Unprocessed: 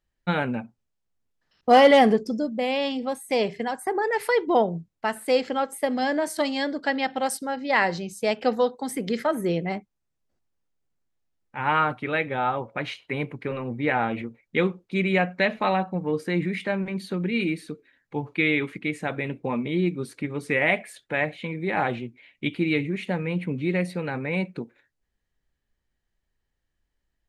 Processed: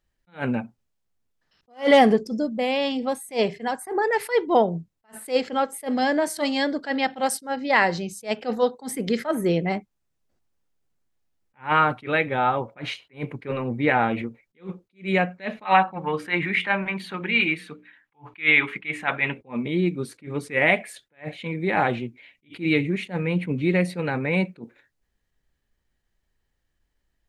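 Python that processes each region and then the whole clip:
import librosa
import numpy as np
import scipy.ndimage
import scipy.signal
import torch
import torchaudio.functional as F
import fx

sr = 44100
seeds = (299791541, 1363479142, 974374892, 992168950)

y = fx.chain(x, sr, fx.band_shelf(hz=1600.0, db=12.5, octaves=2.5),
    fx.hum_notches(base_hz=60, count=10), at=(15.65, 19.41))
y = fx.rider(y, sr, range_db=4, speed_s=2.0)
y = fx.attack_slew(y, sr, db_per_s=270.0)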